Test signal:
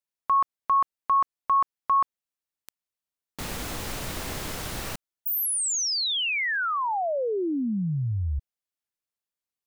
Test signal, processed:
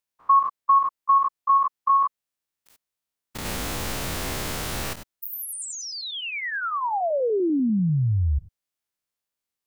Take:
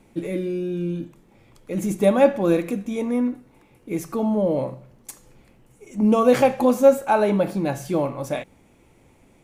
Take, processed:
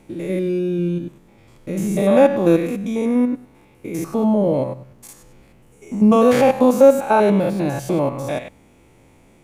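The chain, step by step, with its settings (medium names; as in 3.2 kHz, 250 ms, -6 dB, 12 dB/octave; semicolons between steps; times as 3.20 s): spectrogram pixelated in time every 100 ms; trim +5.5 dB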